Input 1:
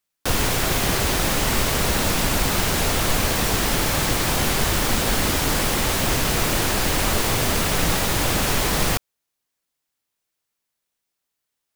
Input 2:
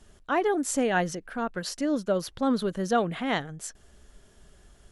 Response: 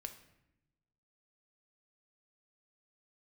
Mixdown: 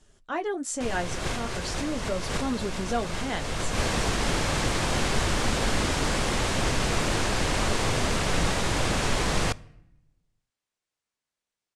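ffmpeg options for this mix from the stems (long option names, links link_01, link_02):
-filter_complex "[0:a]highshelf=frequency=4500:gain=-10,adelay=550,volume=-5.5dB,asplit=2[link_01][link_02];[link_02]volume=-7dB[link_03];[1:a]flanger=delay=6.4:depth=8.9:regen=-44:speed=0.45:shape=triangular,volume=-1dB,asplit=2[link_04][link_05];[link_05]apad=whole_len=542806[link_06];[link_01][link_06]sidechaincompress=threshold=-52dB:ratio=3:attack=22:release=111[link_07];[2:a]atrim=start_sample=2205[link_08];[link_03][link_08]afir=irnorm=-1:irlink=0[link_09];[link_07][link_04][link_09]amix=inputs=3:normalize=0,lowpass=frequency=9000:width=0.5412,lowpass=frequency=9000:width=1.3066,highshelf=frequency=5800:gain=7.5"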